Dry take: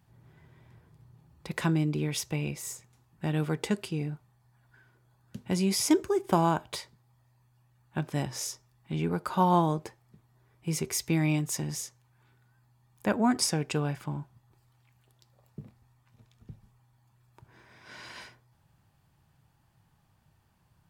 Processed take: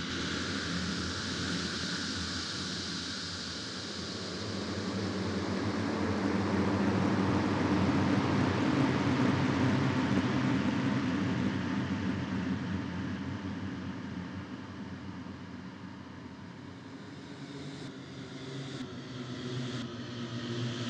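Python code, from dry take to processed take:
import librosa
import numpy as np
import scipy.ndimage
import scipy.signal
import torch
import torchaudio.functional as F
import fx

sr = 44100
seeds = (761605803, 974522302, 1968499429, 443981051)

p1 = fx.pitch_glide(x, sr, semitones=-10.5, runs='ending unshifted')
p2 = fx.bandpass_edges(p1, sr, low_hz=200.0, high_hz=5300.0)
p3 = fx.echo_feedback(p2, sr, ms=961, feedback_pct=51, wet_db=-21)
p4 = fx.paulstretch(p3, sr, seeds[0], factor=6.9, window_s=1.0, from_s=2.4)
p5 = p4 + fx.echo_diffused(p4, sr, ms=1325, feedback_pct=58, wet_db=-4.5, dry=0)
p6 = fx.echo_pitch(p5, sr, ms=103, semitones=1, count=3, db_per_echo=-3.0)
p7 = fx.doppler_dist(p6, sr, depth_ms=0.36)
y = p7 * 10.0 ** (3.5 / 20.0)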